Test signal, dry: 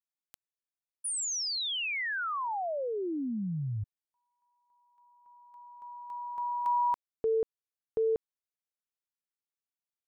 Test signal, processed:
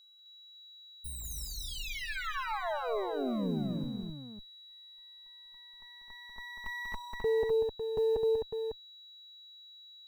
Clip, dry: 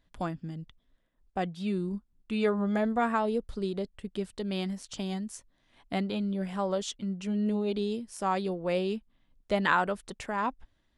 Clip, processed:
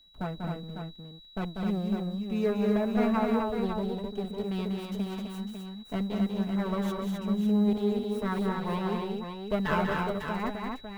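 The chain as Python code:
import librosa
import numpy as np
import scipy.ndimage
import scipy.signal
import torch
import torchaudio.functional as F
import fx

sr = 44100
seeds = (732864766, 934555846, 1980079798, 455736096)

y = fx.lower_of_two(x, sr, delay_ms=4.6)
y = fx.peak_eq(y, sr, hz=6100.0, db=-12.5, octaves=2.8)
y = y + 10.0 ** (-57.0 / 20.0) * np.sin(2.0 * np.pi * 3900.0 * np.arange(len(y)) / sr)
y = fx.quant_companded(y, sr, bits=8)
y = fx.echo_multitap(y, sr, ms=(192, 259, 552), db=(-5.0, -4.0, -7.0))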